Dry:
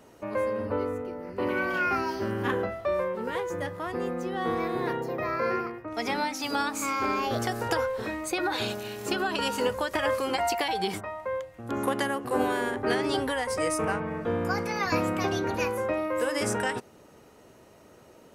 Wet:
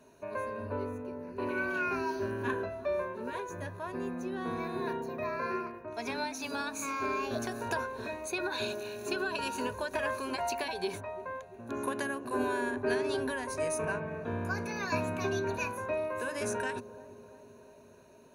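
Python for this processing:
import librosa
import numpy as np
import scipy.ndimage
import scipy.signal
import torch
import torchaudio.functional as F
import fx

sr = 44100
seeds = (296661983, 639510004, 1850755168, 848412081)

p1 = fx.ripple_eq(x, sr, per_octave=1.5, db=12)
p2 = p1 + fx.echo_wet_lowpass(p1, sr, ms=343, feedback_pct=61, hz=750.0, wet_db=-14, dry=0)
y = p2 * 10.0 ** (-7.5 / 20.0)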